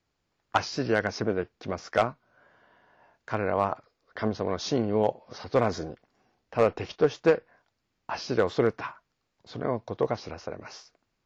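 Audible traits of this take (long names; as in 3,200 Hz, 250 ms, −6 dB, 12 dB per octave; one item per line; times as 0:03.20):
background noise floor −79 dBFS
spectral slope −4.5 dB per octave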